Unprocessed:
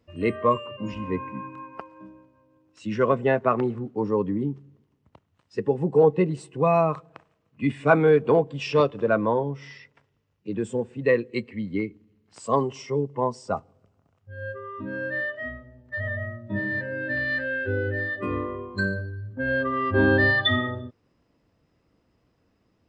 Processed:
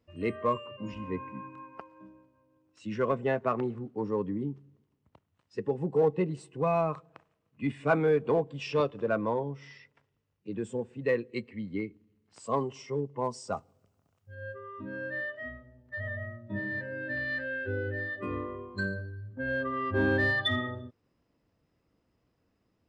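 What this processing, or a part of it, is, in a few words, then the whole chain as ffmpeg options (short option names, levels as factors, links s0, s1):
parallel distortion: -filter_complex "[0:a]asplit=2[s0][s1];[s1]asoftclip=type=hard:threshold=0.133,volume=0.251[s2];[s0][s2]amix=inputs=2:normalize=0,asettb=1/sr,asplit=3[s3][s4][s5];[s3]atrim=end=13.244[s6];[s4]atrim=start=13.24:end=14.35,asetpts=PTS-STARTPTS,afade=t=in:d=0.004:c=qsin,afade=t=out:st=1.106:d=0.004:c=qsin,highshelf=f=4500:g=12[s7];[s5]atrim=start=14.346[s8];[s6][s7]acrossfade=d=0.004:c1=hsin:c2=qsin[s9];[s9][s8]acrossfade=d=0.004:c1=qsin:c2=hsin,volume=0.376"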